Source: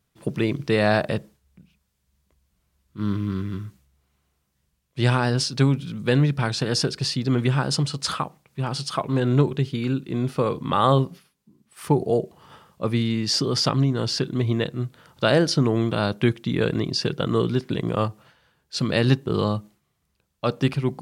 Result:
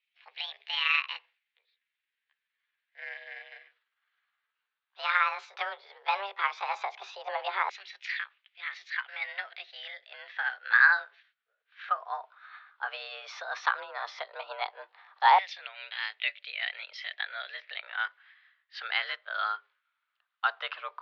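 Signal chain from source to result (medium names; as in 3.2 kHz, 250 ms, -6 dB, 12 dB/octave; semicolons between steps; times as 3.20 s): pitch bend over the whole clip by +7 st ending unshifted; LFO high-pass saw down 0.13 Hz 730–2300 Hz; mistuned SSB +200 Hz 220–3600 Hz; trim -3.5 dB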